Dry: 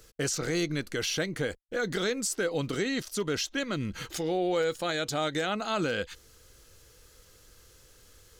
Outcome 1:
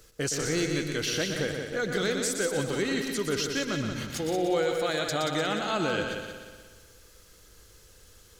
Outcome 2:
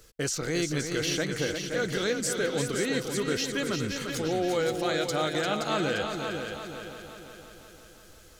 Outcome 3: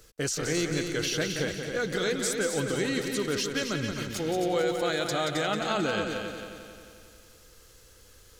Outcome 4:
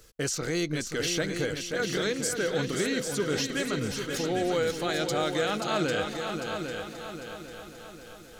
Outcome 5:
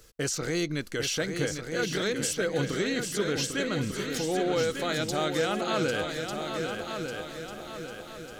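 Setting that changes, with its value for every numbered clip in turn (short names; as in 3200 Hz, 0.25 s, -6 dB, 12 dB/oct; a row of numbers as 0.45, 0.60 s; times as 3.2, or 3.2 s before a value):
multi-head echo, time: 60, 174, 89, 266, 399 ms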